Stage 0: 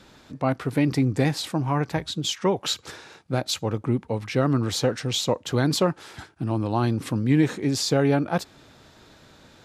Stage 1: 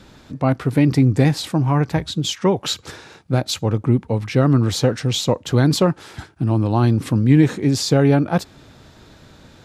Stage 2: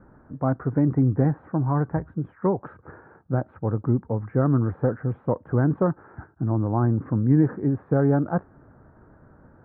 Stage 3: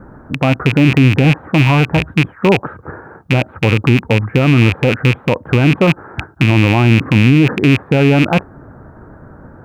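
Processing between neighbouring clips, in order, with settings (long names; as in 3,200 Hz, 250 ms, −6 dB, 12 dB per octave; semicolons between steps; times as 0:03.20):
low-shelf EQ 230 Hz +7.5 dB; level +3 dB
Butterworth low-pass 1,600 Hz 48 dB per octave; level −5.5 dB
loose part that buzzes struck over −30 dBFS, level −18 dBFS; boost into a limiter +15.5 dB; level −1 dB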